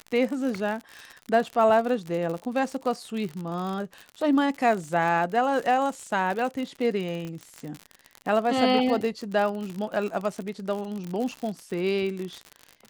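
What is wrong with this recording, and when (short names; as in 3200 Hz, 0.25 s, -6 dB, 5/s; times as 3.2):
crackle 64/s -30 dBFS
7.25 pop -25 dBFS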